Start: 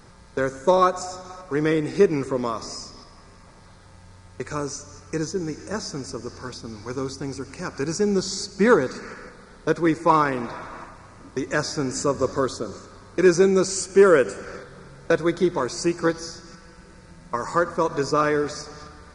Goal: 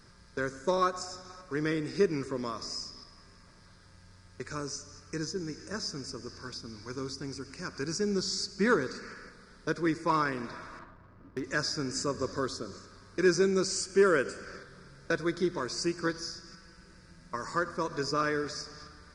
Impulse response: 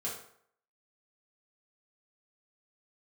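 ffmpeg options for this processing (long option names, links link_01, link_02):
-filter_complex "[0:a]equalizer=frequency=500:width_type=o:width=0.33:gain=-4,equalizer=frequency=800:width_type=o:width=0.33:gain=-10,equalizer=frequency=1600:width_type=o:width=0.33:gain=4,equalizer=frequency=5000:width_type=o:width=0.33:gain=8,asplit=2[link_01][link_02];[1:a]atrim=start_sample=2205,adelay=83[link_03];[link_02][link_03]afir=irnorm=-1:irlink=0,volume=-24dB[link_04];[link_01][link_04]amix=inputs=2:normalize=0,asettb=1/sr,asplit=3[link_05][link_06][link_07];[link_05]atrim=end=10.794[link_08];[link_06]atrim=start=10.79:end=11.44,asetpts=PTS-STARTPTS,afade=type=in:duration=0.004:curve=qsin,afade=type=out:start_time=0.646:duration=0.004:curve=qsin,adynamicsmooth=sensitivity=4.5:basefreq=1100[link_09];[link_07]atrim=start=11.436[link_10];[link_08][link_09]acrossfade=duration=0.004:curve1=hsin:curve2=qsin[link_11];[link_11][link_10]acrossfade=duration=0.004:curve1=qsin:curve2=hsin,volume=-8dB"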